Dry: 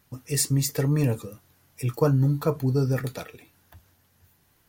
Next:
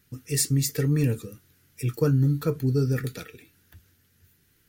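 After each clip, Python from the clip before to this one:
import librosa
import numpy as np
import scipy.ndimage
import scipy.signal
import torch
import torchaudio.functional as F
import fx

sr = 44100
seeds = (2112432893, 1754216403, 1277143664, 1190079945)

y = fx.band_shelf(x, sr, hz=800.0, db=-12.5, octaves=1.2)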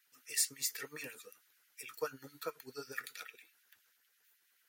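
y = fx.filter_lfo_highpass(x, sr, shape='sine', hz=9.2, low_hz=700.0, high_hz=2300.0, q=1.5)
y = y * 10.0 ** (-7.0 / 20.0)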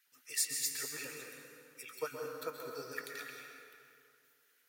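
y = fx.rev_plate(x, sr, seeds[0], rt60_s=2.4, hf_ratio=0.6, predelay_ms=110, drr_db=1.0)
y = y * 10.0 ** (-1.0 / 20.0)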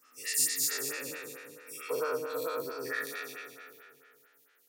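y = fx.spec_dilate(x, sr, span_ms=240)
y = fx.stagger_phaser(y, sr, hz=4.5)
y = y * 10.0 ** (2.0 / 20.0)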